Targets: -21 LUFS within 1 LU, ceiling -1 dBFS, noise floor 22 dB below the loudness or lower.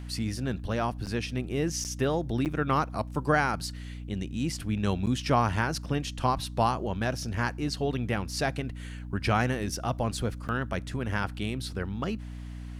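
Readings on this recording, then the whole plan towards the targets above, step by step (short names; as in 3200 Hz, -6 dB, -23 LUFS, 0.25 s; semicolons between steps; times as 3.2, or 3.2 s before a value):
dropouts 5; longest dropout 8.4 ms; hum 60 Hz; harmonics up to 300 Hz; hum level -36 dBFS; loudness -30.0 LUFS; peak -11.5 dBFS; loudness target -21.0 LUFS
-> interpolate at 1.06/1.84/2.45/5.06/10.48, 8.4 ms; de-hum 60 Hz, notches 5; gain +9 dB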